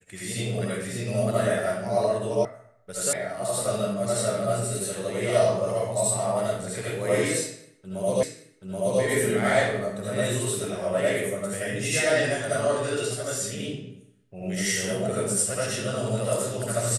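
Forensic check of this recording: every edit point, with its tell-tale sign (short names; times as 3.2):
2.45 sound cut off
3.13 sound cut off
8.23 repeat of the last 0.78 s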